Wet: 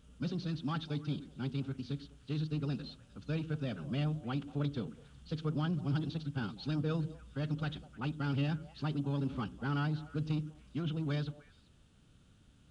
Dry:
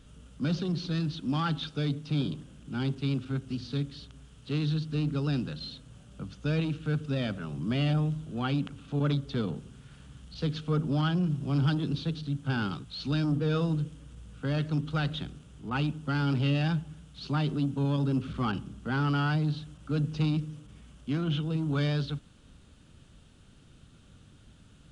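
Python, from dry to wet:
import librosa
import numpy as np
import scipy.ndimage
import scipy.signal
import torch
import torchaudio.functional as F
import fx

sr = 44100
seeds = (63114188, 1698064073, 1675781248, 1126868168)

y = fx.echo_stepped(x, sr, ms=198, hz=250.0, octaves=1.4, feedback_pct=70, wet_db=-10.5)
y = fx.stretch_vocoder(y, sr, factor=0.51)
y = y * librosa.db_to_amplitude(-6.0)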